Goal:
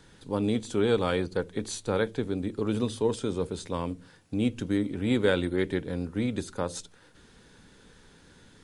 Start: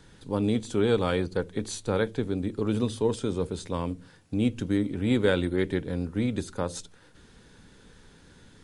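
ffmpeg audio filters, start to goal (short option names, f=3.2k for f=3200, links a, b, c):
-af "lowshelf=f=180:g=-4"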